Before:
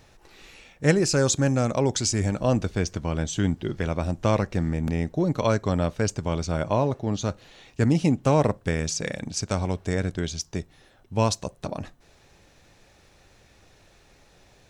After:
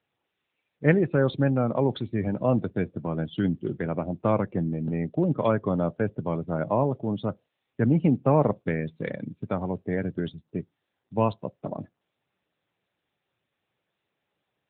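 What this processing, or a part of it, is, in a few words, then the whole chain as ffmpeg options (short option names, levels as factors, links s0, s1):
mobile call with aggressive noise cancelling: -af "highpass=f=110:w=0.5412,highpass=f=110:w=1.3066,afftdn=nr=29:nf=-34" -ar 8000 -c:a libopencore_amrnb -b:a 10200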